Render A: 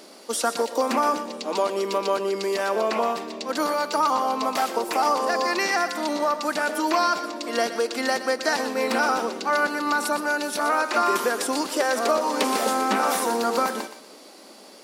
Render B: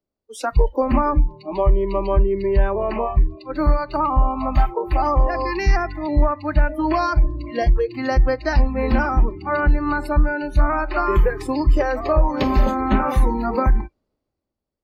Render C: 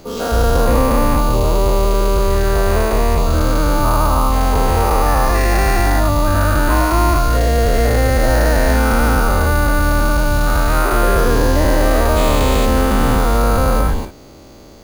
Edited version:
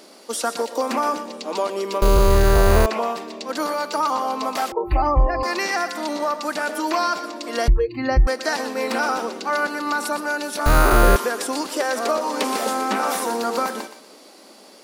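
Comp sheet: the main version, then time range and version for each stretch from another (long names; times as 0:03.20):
A
0:02.02–0:02.86: punch in from C
0:04.72–0:05.43: punch in from B
0:07.68–0:08.27: punch in from B
0:10.66–0:11.16: punch in from C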